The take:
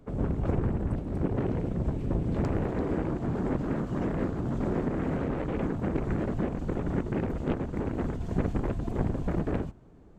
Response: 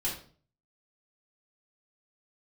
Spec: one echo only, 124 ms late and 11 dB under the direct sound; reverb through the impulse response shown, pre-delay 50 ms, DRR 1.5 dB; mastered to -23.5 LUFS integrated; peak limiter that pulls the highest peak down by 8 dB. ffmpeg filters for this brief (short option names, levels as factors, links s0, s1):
-filter_complex "[0:a]alimiter=limit=0.0794:level=0:latency=1,aecho=1:1:124:0.282,asplit=2[s0][s1];[1:a]atrim=start_sample=2205,adelay=50[s2];[s1][s2]afir=irnorm=-1:irlink=0,volume=0.473[s3];[s0][s3]amix=inputs=2:normalize=0,volume=1.78"